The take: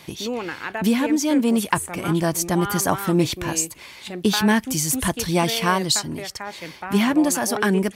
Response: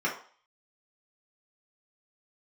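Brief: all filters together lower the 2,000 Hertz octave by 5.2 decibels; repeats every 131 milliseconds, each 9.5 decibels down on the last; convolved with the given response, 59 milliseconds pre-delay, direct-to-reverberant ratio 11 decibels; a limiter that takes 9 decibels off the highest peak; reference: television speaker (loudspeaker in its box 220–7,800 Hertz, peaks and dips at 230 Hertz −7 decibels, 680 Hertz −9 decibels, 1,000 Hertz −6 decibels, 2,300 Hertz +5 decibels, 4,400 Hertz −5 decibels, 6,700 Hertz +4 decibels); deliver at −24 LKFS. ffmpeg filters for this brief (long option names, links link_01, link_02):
-filter_complex "[0:a]equalizer=frequency=2000:width_type=o:gain=-8,alimiter=limit=-14.5dB:level=0:latency=1,aecho=1:1:131|262|393|524:0.335|0.111|0.0365|0.012,asplit=2[link_01][link_02];[1:a]atrim=start_sample=2205,adelay=59[link_03];[link_02][link_03]afir=irnorm=-1:irlink=0,volume=-21dB[link_04];[link_01][link_04]amix=inputs=2:normalize=0,highpass=frequency=220:width=0.5412,highpass=frequency=220:width=1.3066,equalizer=frequency=230:width_type=q:width=4:gain=-7,equalizer=frequency=680:width_type=q:width=4:gain=-9,equalizer=frequency=1000:width_type=q:width=4:gain=-6,equalizer=frequency=2300:width_type=q:width=4:gain=5,equalizer=frequency=4400:width_type=q:width=4:gain=-5,equalizer=frequency=6700:width_type=q:width=4:gain=4,lowpass=frequency=7800:width=0.5412,lowpass=frequency=7800:width=1.3066,volume=3.5dB"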